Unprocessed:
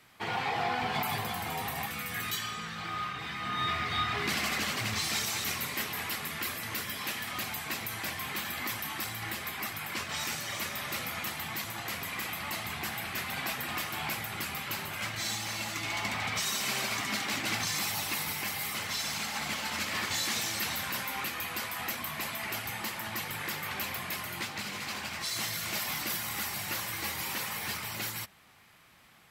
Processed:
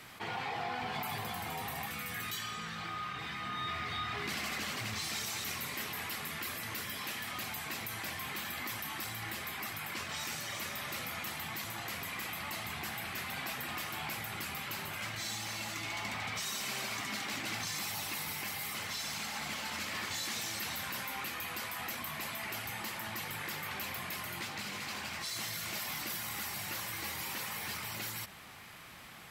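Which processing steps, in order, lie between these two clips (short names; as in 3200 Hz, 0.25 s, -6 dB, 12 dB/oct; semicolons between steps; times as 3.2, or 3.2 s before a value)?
fast leveller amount 50%; gain -8 dB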